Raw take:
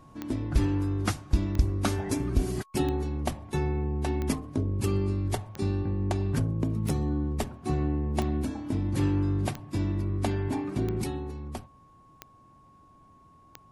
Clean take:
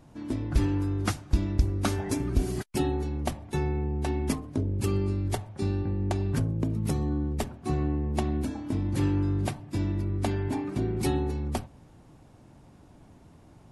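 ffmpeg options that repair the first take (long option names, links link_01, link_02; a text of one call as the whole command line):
ffmpeg -i in.wav -af "adeclick=threshold=4,bandreject=frequency=1100:width=30,asetnsamples=nb_out_samples=441:pad=0,asendcmd='11.04 volume volume 7dB',volume=0dB" out.wav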